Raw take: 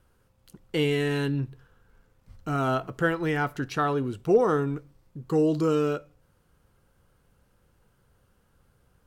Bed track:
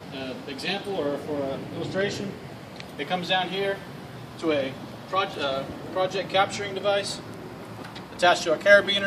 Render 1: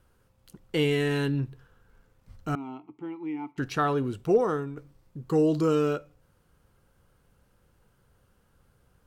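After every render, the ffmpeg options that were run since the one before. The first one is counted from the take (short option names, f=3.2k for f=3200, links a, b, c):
-filter_complex "[0:a]asettb=1/sr,asplit=3[a][b][c];[a]atrim=end=2.554[d];[b]atrim=start=2.55:end=3.58,asetpts=PTS-STARTPTS,afade=t=in:d=0.004:c=qsin,afade=t=out:st=1.026:d=0.004:c=qsin,asplit=3[e][f][g];[e]bandpass=f=300:t=q:w=8,volume=0dB[h];[f]bandpass=f=870:t=q:w=8,volume=-6dB[i];[g]bandpass=f=2.24k:t=q:w=8,volume=-9dB[j];[h][i][j]amix=inputs=3:normalize=0[k];[c]atrim=start=3.576[l];[d][k]acrossfade=d=0.004:c1=hsin:c2=qsin[m];[m][l]acrossfade=d=0.004:c1=qsin:c2=hsin,asplit=2[n][o];[n]atrim=end=4.77,asetpts=PTS-STARTPTS,afade=t=out:st=4.2:d=0.57:silence=0.316228[p];[o]atrim=start=4.77,asetpts=PTS-STARTPTS,afade=t=in:d=0.004:c=hsin:silence=0.316228[q];[p][q]concat=n=2:v=0:a=1"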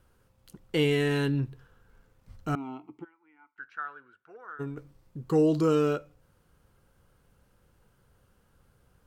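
-filter_complex "[0:a]asplit=3[a][b][c];[a]afade=t=out:st=3.03:d=0.02[d];[b]bandpass=f=1.5k:t=q:w=8.9,afade=t=in:st=3.03:d=0.02,afade=t=out:st=4.59:d=0.02[e];[c]afade=t=in:st=4.59:d=0.02[f];[d][e][f]amix=inputs=3:normalize=0"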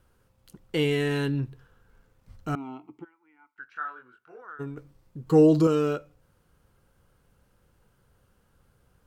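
-filter_complex "[0:a]asettb=1/sr,asplit=3[a][b][c];[a]atrim=end=3.734[d];[b]atrim=start=3.73:end=4.42,asetpts=PTS-STARTPTS,afade=t=in:d=0.004:c=qsin,afade=t=out:st=0.686:d=0.004:c=qsin,asplit=2[e][f];[f]adelay=24,volume=-2.5dB[g];[e][g]amix=inputs=2:normalize=0,atrim=end_sample=30429[h];[c]atrim=start=4.416[i];[d][h]acrossfade=d=0.004:c1=hsin:c2=qsin[j];[j][i]acrossfade=d=0.004:c1=qsin:c2=hsin,asettb=1/sr,asplit=3[k][l][m];[k]atrim=end=5.264[n];[l]atrim=start=5.26:end=5.67,asetpts=PTS-STARTPTS,afade=t=in:d=0.004:c=qsin,afade=t=out:st=0.406:d=0.004:c=qsin,aecho=1:1:6.5:0.93,atrim=end_sample=18081[o];[m]atrim=start=5.666[p];[n][o]acrossfade=d=0.004:c1=hsin:c2=qsin[q];[q][p]acrossfade=d=0.004:c1=qsin:c2=hsin"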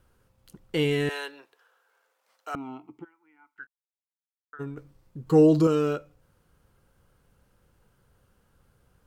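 -filter_complex "[0:a]asettb=1/sr,asplit=3[a][b][c];[a]atrim=end=1.094[d];[b]atrim=start=1.09:end=2.55,asetpts=PTS-STARTPTS,afade=t=in:d=0.004:c=qsin,afade=t=out:st=1.456:d=0.004:c=qsin,highpass=f=540:w=0.5412,highpass=f=540:w=1.3066[e];[c]atrim=start=2.546[f];[d][e]acrossfade=d=0.004:c1=hsin:c2=qsin[g];[g][f]acrossfade=d=0.004:c1=qsin:c2=hsin,asplit=3[h][i][j];[h]atrim=end=3.67,asetpts=PTS-STARTPTS,afade=t=out:st=3.666:d=0.004:c=hsin[k];[i]atrim=start=3.67:end=4.53,asetpts=PTS-STARTPTS,volume=0[l];[j]atrim=start=4.53,asetpts=PTS-STARTPTS,afade=t=in:d=0.004:c=hsin[m];[k][l][m]concat=n=3:v=0:a=1"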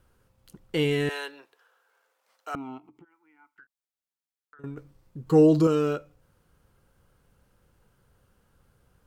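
-filter_complex "[0:a]asettb=1/sr,asplit=3[a][b][c];[a]atrim=end=2.784[d];[b]atrim=start=2.78:end=4.64,asetpts=PTS-STARTPTS,afade=t=in:d=0.004:c=qsin,afade=t=out:st=1.856:d=0.004:c=qsin,acompressor=threshold=-51dB:ratio=4:attack=3.2:release=140:knee=1:detection=peak[e];[c]atrim=start=4.636[f];[d][e]acrossfade=d=0.004:c1=hsin:c2=qsin[g];[g][f]acrossfade=d=0.004:c1=qsin:c2=hsin"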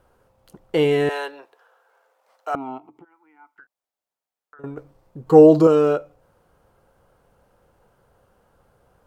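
-af "equalizer=f=680:t=o:w=1.8:g=13"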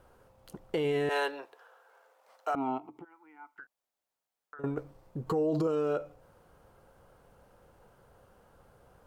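-af "acompressor=threshold=-21dB:ratio=3,alimiter=limit=-22dB:level=0:latency=1:release=32"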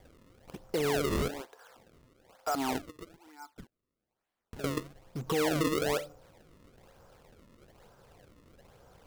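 -filter_complex "[0:a]asplit=2[a][b];[b]aeval=exprs='(mod(47.3*val(0)+1,2)-1)/47.3':c=same,volume=-11.5dB[c];[a][c]amix=inputs=2:normalize=0,acrusher=samples=32:mix=1:aa=0.000001:lfo=1:lforange=51.2:lforate=1.1"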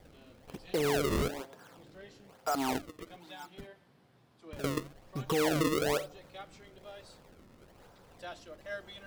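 -filter_complex "[1:a]volume=-25.5dB[a];[0:a][a]amix=inputs=2:normalize=0"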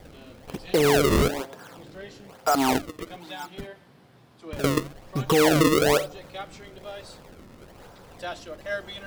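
-af "volume=10dB"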